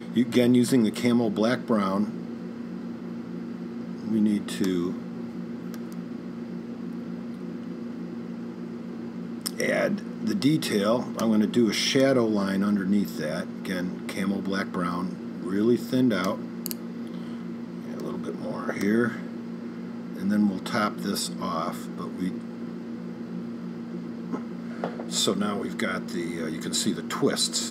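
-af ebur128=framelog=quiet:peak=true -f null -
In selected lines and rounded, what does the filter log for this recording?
Integrated loudness:
  I:         -27.7 LUFS
  Threshold: -37.7 LUFS
Loudness range:
  LRA:        10.0 LU
  Threshold: -48.3 LUFS
  LRA low:   -34.1 LUFS
  LRA high:  -24.1 LUFS
True peak:
  Peak:       -8.0 dBFS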